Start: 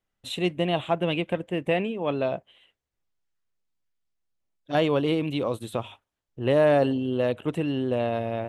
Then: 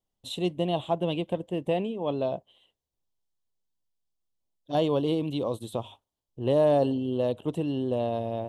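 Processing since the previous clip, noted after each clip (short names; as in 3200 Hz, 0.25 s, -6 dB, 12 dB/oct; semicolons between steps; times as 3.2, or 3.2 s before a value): band shelf 1800 Hz -12.5 dB 1.2 oct; gain -2 dB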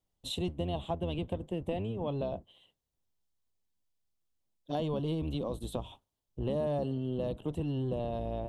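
octaver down 1 oct, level +1 dB; compressor 3:1, threshold -33 dBFS, peak gain reduction 11.5 dB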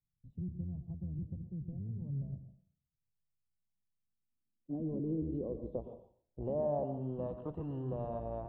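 low-pass sweep 150 Hz -> 1200 Hz, 3.49–7.43; plate-style reverb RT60 0.51 s, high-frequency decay 1×, pre-delay 0.1 s, DRR 8.5 dB; gain -7 dB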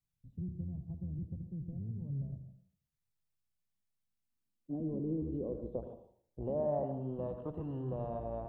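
tape echo 77 ms, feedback 33%, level -12 dB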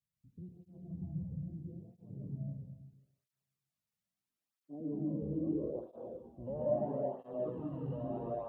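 digital reverb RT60 1.2 s, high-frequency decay 0.95×, pre-delay 0.1 s, DRR -5 dB; tape flanging out of phase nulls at 0.76 Hz, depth 3.1 ms; gain -3 dB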